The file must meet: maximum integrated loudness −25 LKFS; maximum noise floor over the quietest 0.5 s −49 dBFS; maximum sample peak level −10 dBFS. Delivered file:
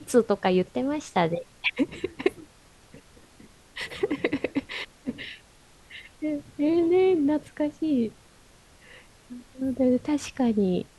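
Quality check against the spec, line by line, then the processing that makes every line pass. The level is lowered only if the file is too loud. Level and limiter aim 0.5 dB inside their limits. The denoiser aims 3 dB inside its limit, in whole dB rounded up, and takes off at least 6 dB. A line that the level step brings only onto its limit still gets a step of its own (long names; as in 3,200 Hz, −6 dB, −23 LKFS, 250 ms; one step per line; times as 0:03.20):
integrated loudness −26.5 LKFS: in spec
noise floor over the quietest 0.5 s −55 dBFS: in spec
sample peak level −8.0 dBFS: out of spec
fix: brickwall limiter −10.5 dBFS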